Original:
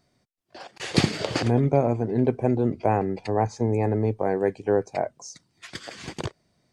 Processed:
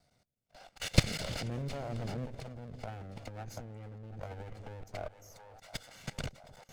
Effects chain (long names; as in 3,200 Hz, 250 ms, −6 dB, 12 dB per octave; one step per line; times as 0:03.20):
lower of the sound and its delayed copy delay 1.4 ms
echo with a time of its own for lows and highs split 510 Hz, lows 251 ms, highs 716 ms, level −15 dB
output level in coarse steps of 18 dB
dynamic equaliser 890 Hz, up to −7 dB, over −52 dBFS, Q 1.2
0:02.25–0:04.83: compressor whose output falls as the input rises −42 dBFS, ratio −0.5